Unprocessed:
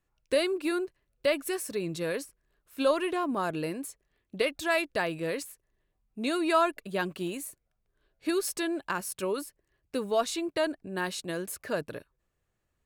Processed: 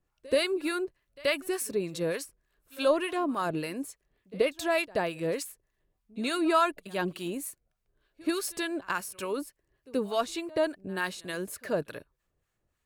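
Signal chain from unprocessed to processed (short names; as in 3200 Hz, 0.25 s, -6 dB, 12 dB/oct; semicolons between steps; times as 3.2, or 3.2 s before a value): harmonic tremolo 3.4 Hz, depth 70%, crossover 910 Hz; pre-echo 80 ms -22.5 dB; gain +3.5 dB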